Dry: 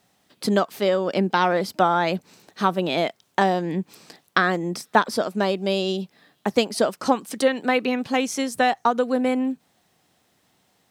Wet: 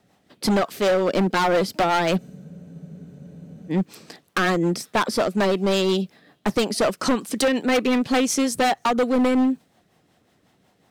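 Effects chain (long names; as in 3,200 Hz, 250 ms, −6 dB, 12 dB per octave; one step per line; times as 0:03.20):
rotating-speaker cabinet horn 5.5 Hz
hard clipping −23.5 dBFS, distortion −7 dB
frozen spectrum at 0:02.21, 1.50 s
one half of a high-frequency compander decoder only
level +7.5 dB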